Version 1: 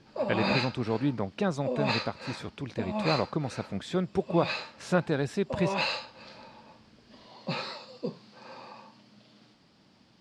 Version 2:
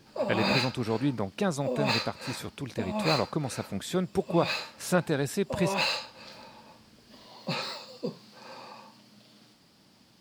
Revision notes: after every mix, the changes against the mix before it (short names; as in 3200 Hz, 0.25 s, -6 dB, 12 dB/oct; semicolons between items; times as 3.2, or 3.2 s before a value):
master: remove air absorption 98 m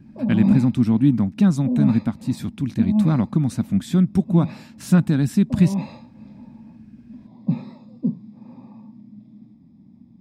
background: add running mean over 30 samples; master: add resonant low shelf 330 Hz +10.5 dB, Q 3